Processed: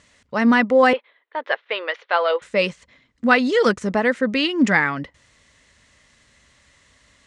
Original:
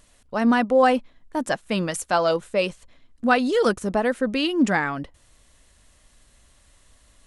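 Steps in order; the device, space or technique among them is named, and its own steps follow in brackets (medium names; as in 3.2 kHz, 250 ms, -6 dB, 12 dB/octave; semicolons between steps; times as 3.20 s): car door speaker (cabinet simulation 87–7300 Hz, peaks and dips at 340 Hz -4 dB, 720 Hz -5 dB, 2 kHz +8 dB); 0.93–2.42 s: elliptic band-pass 430–3600 Hz, stop band 40 dB; trim +3.5 dB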